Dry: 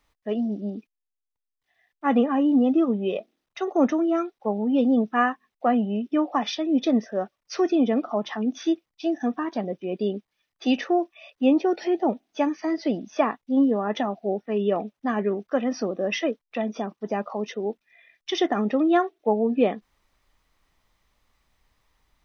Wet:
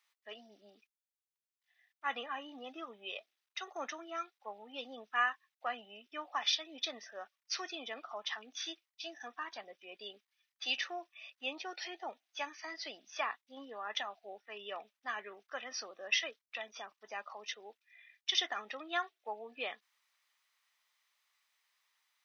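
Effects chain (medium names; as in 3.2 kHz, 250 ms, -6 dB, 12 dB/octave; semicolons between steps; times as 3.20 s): high-pass 1.5 kHz 12 dB/octave; dynamic bell 4.1 kHz, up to +5 dB, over -49 dBFS, Q 1.4; trim -3.5 dB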